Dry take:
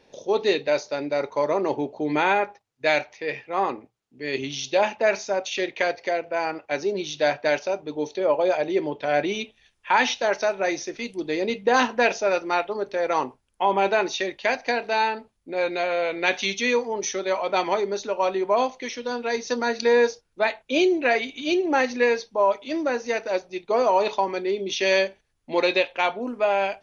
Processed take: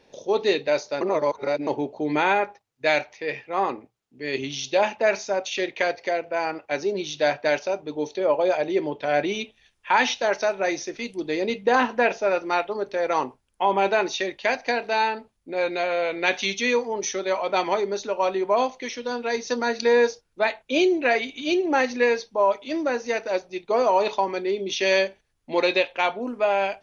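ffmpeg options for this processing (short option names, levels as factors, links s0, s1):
-filter_complex "[0:a]asettb=1/sr,asplit=3[s0][s1][s2];[s0]atrim=end=11.754[s3];[s1]atrim=start=11.75:end=12.43,asetpts=PTS-STARTPTS,afade=t=in:d=0.004:c=qsin,afade=t=out:st=0.676:d=0.004:c=qsin,acrossover=split=2900[s4][s5];[s5]acompressor=threshold=0.00631:ratio=4:attack=1:release=60[s6];[s4][s6]amix=inputs=2:normalize=0[s7];[s2]atrim=start=12.426[s8];[s3][s7]acrossfade=d=0.004:c1=hsin:c2=qsin[s9];[s9][s8]acrossfade=d=0.004:c1=qsin:c2=hsin,asplit=3[s10][s11][s12];[s10]atrim=end=1.012[s13];[s11]atrim=start=1.008:end=1.672,asetpts=PTS-STARTPTS,areverse[s14];[s12]atrim=start=1.668[s15];[s13][s14]acrossfade=d=0.004:c1=hsin:c2=hsin[s16];[s16][s15]acrossfade=d=0.004:c1=hsin:c2=hsin"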